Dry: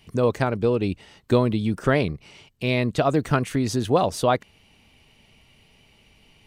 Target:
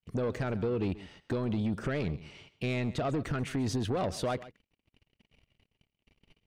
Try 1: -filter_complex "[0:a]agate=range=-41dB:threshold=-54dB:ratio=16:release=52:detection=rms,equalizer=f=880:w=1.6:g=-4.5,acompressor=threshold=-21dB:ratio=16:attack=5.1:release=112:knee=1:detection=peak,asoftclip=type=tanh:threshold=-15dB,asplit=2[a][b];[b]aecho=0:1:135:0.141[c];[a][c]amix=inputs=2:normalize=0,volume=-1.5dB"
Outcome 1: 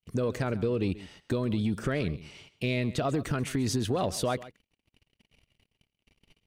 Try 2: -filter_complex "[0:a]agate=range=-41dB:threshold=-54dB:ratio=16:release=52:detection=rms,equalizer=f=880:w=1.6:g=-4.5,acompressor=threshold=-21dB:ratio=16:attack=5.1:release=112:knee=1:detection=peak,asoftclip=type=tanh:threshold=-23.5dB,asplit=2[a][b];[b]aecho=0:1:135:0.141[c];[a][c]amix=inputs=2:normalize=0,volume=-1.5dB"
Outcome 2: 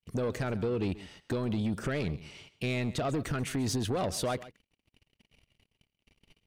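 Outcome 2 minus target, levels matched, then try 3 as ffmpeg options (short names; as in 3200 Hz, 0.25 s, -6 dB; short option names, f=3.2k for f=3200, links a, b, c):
4000 Hz band +3.0 dB
-filter_complex "[0:a]agate=range=-41dB:threshold=-54dB:ratio=16:release=52:detection=rms,equalizer=f=880:w=1.6:g=-4.5,acompressor=threshold=-21dB:ratio=16:attack=5.1:release=112:knee=1:detection=peak,lowpass=f=3.2k:p=1,asoftclip=type=tanh:threshold=-23.5dB,asplit=2[a][b];[b]aecho=0:1:135:0.141[c];[a][c]amix=inputs=2:normalize=0,volume=-1.5dB"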